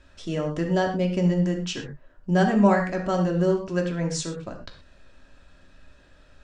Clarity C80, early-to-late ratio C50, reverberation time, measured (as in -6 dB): 11.0 dB, 7.5 dB, no single decay rate